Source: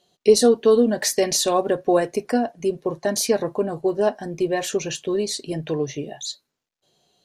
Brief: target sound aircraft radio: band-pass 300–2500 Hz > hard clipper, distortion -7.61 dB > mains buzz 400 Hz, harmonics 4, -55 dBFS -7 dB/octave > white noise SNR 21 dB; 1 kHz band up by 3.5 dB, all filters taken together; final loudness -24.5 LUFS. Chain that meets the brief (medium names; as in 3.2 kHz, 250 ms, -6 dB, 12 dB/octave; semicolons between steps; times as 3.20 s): band-pass 300–2500 Hz; peaking EQ 1 kHz +5.5 dB; hard clipper -18 dBFS; mains buzz 400 Hz, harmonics 4, -55 dBFS -7 dB/octave; white noise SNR 21 dB; trim +1 dB